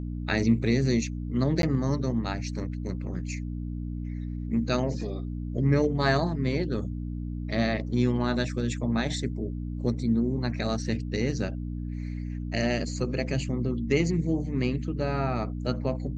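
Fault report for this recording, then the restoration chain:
mains hum 60 Hz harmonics 5 −33 dBFS
0:01.62–0:01.63: drop-out 12 ms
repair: hum removal 60 Hz, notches 5
repair the gap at 0:01.62, 12 ms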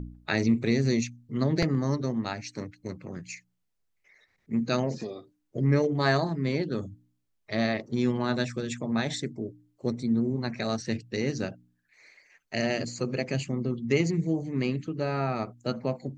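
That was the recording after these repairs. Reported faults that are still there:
none of them is left

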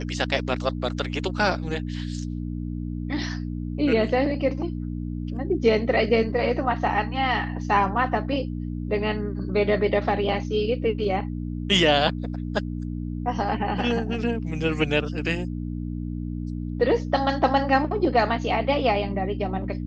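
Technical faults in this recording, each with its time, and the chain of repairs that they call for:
mains hum 60 Hz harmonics 5 −30 dBFS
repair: hum removal 60 Hz, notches 5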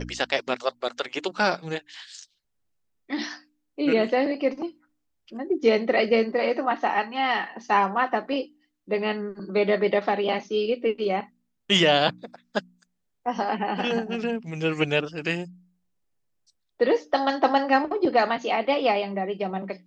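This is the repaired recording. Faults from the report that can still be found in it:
none of them is left

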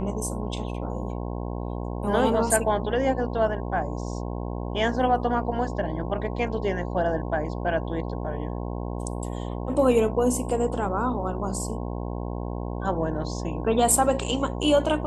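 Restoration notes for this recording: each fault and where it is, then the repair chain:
mains buzz 60 Hz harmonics 18 −31 dBFS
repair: hum removal 60 Hz, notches 18

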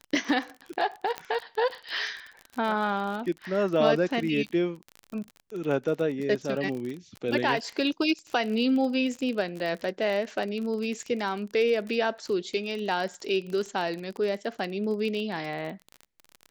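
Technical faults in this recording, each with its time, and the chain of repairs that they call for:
surface crackle 31 per second −32 dBFS
0:01.18: click −16 dBFS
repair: click removal

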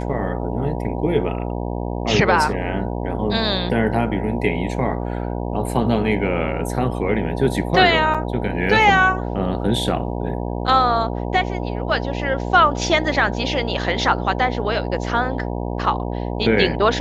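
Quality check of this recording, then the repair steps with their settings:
mains buzz 60 Hz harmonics 16 −25 dBFS
0:08.14–0:08.15: drop-out 5.8 ms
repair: hum removal 60 Hz, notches 16
repair the gap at 0:08.14, 5.8 ms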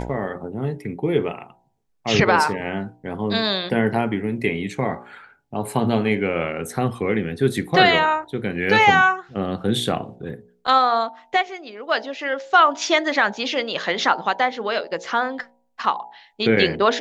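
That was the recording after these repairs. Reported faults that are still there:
none of them is left

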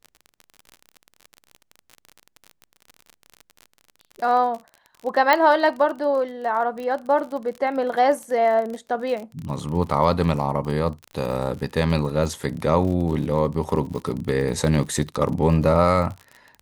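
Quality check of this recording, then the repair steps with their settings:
surface crackle 41 per second −30 dBFS
0:05.33: click −5 dBFS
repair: click removal

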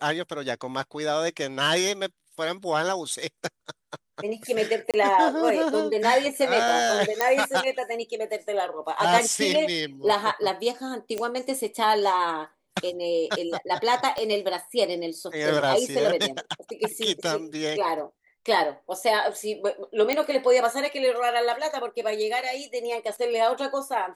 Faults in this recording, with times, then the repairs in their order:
0:04.91–0:04.94: drop-out 27 ms
0:07.21: click −7 dBFS
0:11.18: click −16 dBFS
0:14.18: click −17 dBFS
0:20.13: click −9 dBFS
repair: click removal
repair the gap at 0:04.91, 27 ms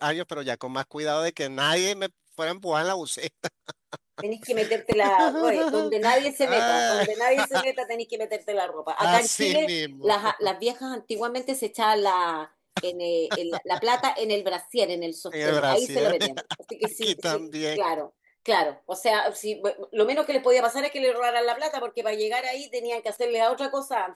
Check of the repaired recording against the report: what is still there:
0:14.18: click

